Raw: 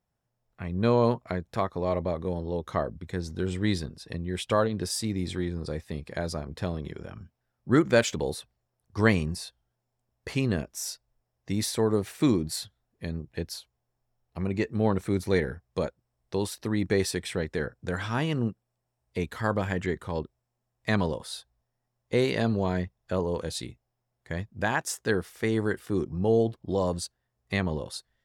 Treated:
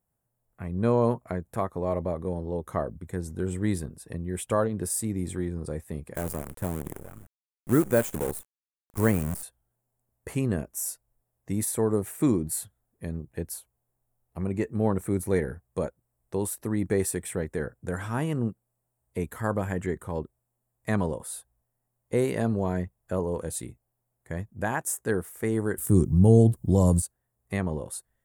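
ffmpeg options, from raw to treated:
-filter_complex "[0:a]asettb=1/sr,asplit=3[a][b][c];[a]atrim=end=6.154[d];[b]atrim=start=6.15:end=9.43,asetpts=PTS-STARTPTS,afade=t=in:d=0.004:c=qsin,afade=t=out:st=3.276:d=0.004:c=qsin,acrusher=bits=6:dc=4:mix=0:aa=0.000001[e];[c]atrim=start=9.426[f];[d][e]acrossfade=d=0.004:c1=hsin:c2=qsin[g];[g][f]acrossfade=d=0.004:c1=qsin:c2=hsin,asettb=1/sr,asplit=3[h][i][j];[h]atrim=end=25.784[k];[i]atrim=start=25.78:end=27.02,asetpts=PTS-STARTPTS,afade=t=in:d=0.004:c=qsin,afade=t=out:st=1.236:d=0.004:c=qsin,bass=f=250:g=14,treble=f=4k:g=14[l];[j]atrim=start=27.016[m];[k][l]acrossfade=d=0.004:c1=hsin:c2=qsin[n];[n][m]acrossfade=d=0.004:c1=qsin:c2=hsin,equalizer=f=4.5k:w=0.65:g=-11,deesser=0.65,highshelf=f=6.3k:t=q:w=1.5:g=10"

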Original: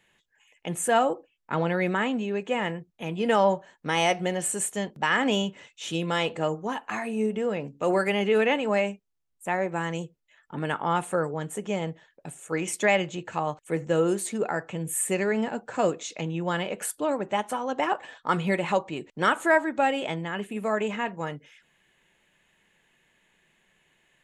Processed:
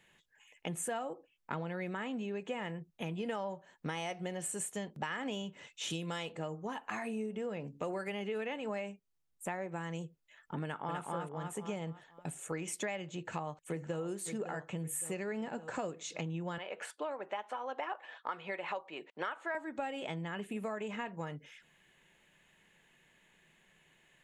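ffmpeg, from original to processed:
-filter_complex "[0:a]asettb=1/sr,asplit=3[a][b][c];[a]atrim=end=5.904[d];[b]atrim=start=5.9:end=6.32,asetpts=PTS-STARTPTS,afade=t=in:d=0.004:c=qsin,afade=t=out:st=0.416:d=0.004:c=qsin,highshelf=f=4.4k:g=8.5[e];[c]atrim=start=6.316[f];[d][e]acrossfade=d=0.004:c1=hsin:c2=qsin[g];[g][f]acrossfade=d=0.004:c1=qsin:c2=hsin,asplit=2[h][i];[i]afade=t=in:st=10.63:d=0.01,afade=t=out:st=11.03:d=0.01,aecho=0:1:250|500|750|1000|1250:1|0.35|0.1225|0.042875|0.0150062[j];[h][j]amix=inputs=2:normalize=0,asplit=2[k][l];[l]afade=t=in:st=13.14:d=0.01,afade=t=out:st=14.01:d=0.01,aecho=0:1:560|1120|1680|2240|2800:0.251189|0.125594|0.0627972|0.0313986|0.0156993[m];[k][m]amix=inputs=2:normalize=0,asettb=1/sr,asplit=3[n][o][p];[n]atrim=end=16.584[q];[o]atrim=start=16.58:end=19.55,asetpts=PTS-STARTPTS,afade=t=in:d=0.004:c=qsin,afade=t=out:st=2.966:d=0.004:c=qsin,highpass=530,lowpass=3.5k[r];[p]atrim=start=19.546[s];[q][r]acrossfade=d=0.004:c1=hsin:c2=qsin[t];[t][s]acrossfade=d=0.004:c1=qsin:c2=hsin,equalizer=f=160:t=o:w=0.31:g=4,acompressor=threshold=-35dB:ratio=6,volume=-1dB"

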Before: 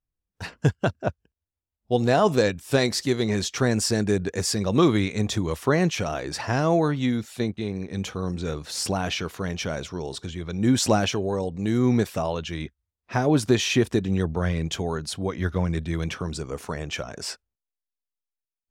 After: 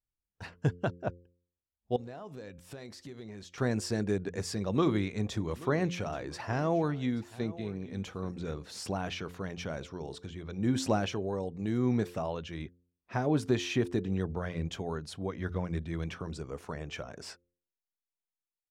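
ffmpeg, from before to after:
-filter_complex "[0:a]asettb=1/sr,asplit=3[a][b][c];[a]atrim=end=1.964[d];[b]atrim=start=1.96:end=3.58,asetpts=PTS-STARTPTS,afade=t=in:d=0.004:c=qsin,afade=t=out:st=1.616:d=0.004:c=qsin,acompressor=threshold=-34dB:ratio=6:attack=3.2:release=140:knee=1:detection=peak[e];[c]atrim=start=3.576[f];[d][e]acrossfade=d=0.004:c1=hsin:c2=qsin[g];[g][f]acrossfade=d=0.004:c1=qsin:c2=hsin,asplit=3[h][i][j];[h]afade=t=out:st=5.29:d=0.02[k];[i]aecho=1:1:830:0.112,afade=t=in:st=5.29:d=0.02,afade=t=out:st=8.77:d=0.02[l];[j]afade=t=in:st=8.77:d=0.02[m];[k][l][m]amix=inputs=3:normalize=0,highshelf=f=3.6k:g=-8,bandreject=f=87.88:t=h:w=4,bandreject=f=175.76:t=h:w=4,bandreject=f=263.64:t=h:w=4,bandreject=f=351.52:t=h:w=4,bandreject=f=439.4:t=h:w=4,bandreject=f=527.28:t=h:w=4,volume=-7.5dB"

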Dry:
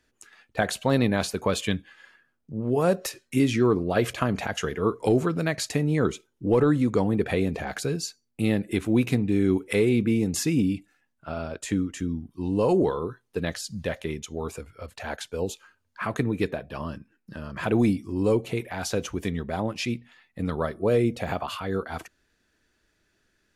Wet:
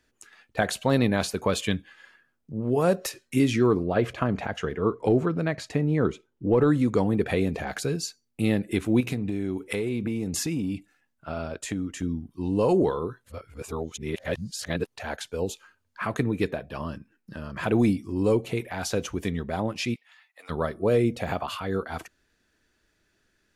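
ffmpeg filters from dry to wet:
-filter_complex "[0:a]asettb=1/sr,asplit=3[a][b][c];[a]atrim=end=3.864[d];[b]atrim=start=3.86:end=6.62,asetpts=PTS-STARTPTS,afade=t=in:d=0.004:c=qsin,afade=t=out:st=2.756:d=0.004:c=qsin,lowpass=f=1.8k:p=1[e];[c]atrim=start=6.616[f];[d][e]acrossfade=d=0.004:c1=hsin:c2=qsin[g];[g][f]acrossfade=d=0.004:c1=qsin:c2=hsin,asettb=1/sr,asplit=3[h][i][j];[h]atrim=end=9.004[k];[i]atrim=start=9:end=12.03,asetpts=PTS-STARTPTS,afade=t=in:d=0.004:c=qsin,afade=t=out:st=3.026:d=0.004:c=qsin,acompressor=threshold=-24dB:ratio=6:attack=3.2:release=140:knee=1:detection=peak[l];[j]atrim=start=12.026[m];[k][l]acrossfade=d=0.004:c1=hsin:c2=qsin[n];[n][m]acrossfade=d=0.004:c1=qsin:c2=hsin,asplit=3[o][p][q];[o]afade=t=out:st=19.94:d=0.02[r];[p]highpass=f=750:w=0.5412,highpass=f=750:w=1.3066,afade=t=in:st=19.94:d=0.02,afade=t=out:st=20.49:d=0.02[s];[q]afade=t=in:st=20.49:d=0.02[t];[r][s][t]amix=inputs=3:normalize=0,asplit=3[u][v][w];[u]atrim=end=13.242[x];[v]atrim=start=13.238:end=14.962,asetpts=PTS-STARTPTS,areverse[y];[w]atrim=start=14.958[z];[x][y]acrossfade=d=0.004:c1=hsin:c2=hsin[aa];[aa][z]acrossfade=d=0.004:c1=hsin:c2=hsin"

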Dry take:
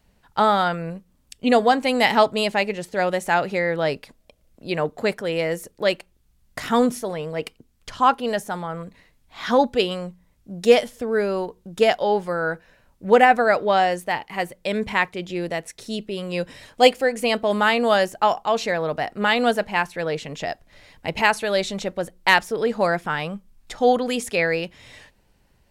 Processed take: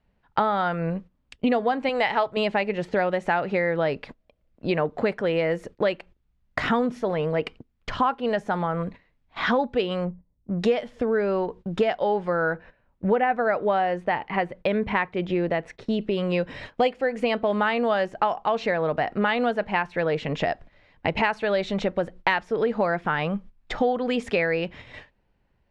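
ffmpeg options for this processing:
-filter_complex "[0:a]asettb=1/sr,asplit=3[a][b][c];[a]atrim=end=1.894[d];[b]atrim=start=1.89:end=2.37,asetpts=PTS-STARTPTS,afade=t=in:d=0.004:c=qsin,afade=t=out:st=0.476:d=0.004:c=qsin,equalizer=f=240:w=1.5:g=-11.5[e];[c]atrim=start=2.366[f];[d][e]acrossfade=d=0.004:c1=hsin:c2=qsin[g];[g][f]acrossfade=d=0.004:c1=qsin:c2=hsin,asplit=3[h][i][j];[h]afade=t=out:st=10.04:d=0.02[k];[i]adynamicsmooth=sensitivity=3.5:basefreq=520,afade=t=in:st=10.04:d=0.02,afade=t=out:st=10.58:d=0.02[l];[j]afade=t=in:st=10.58:d=0.02[m];[k][l][m]amix=inputs=3:normalize=0,asettb=1/sr,asplit=3[n][o][p];[n]atrim=end=12.534[q];[o]atrim=start=12.53:end=16.01,asetpts=PTS-STARTPTS,afade=t=in:d=0.004:c=qsin,afade=t=out:st=3.476:d=0.004:c=qsin,highshelf=f=4.5k:g=-10[r];[p]atrim=start=16.006[s];[q][r]acrossfade=d=0.004:c1=hsin:c2=qsin[t];[t][s]acrossfade=d=0.004:c1=qsin:c2=hsin,agate=range=-15dB:threshold=-44dB:ratio=16:detection=peak,lowpass=2.7k,acompressor=threshold=-29dB:ratio=5,volume=8dB"

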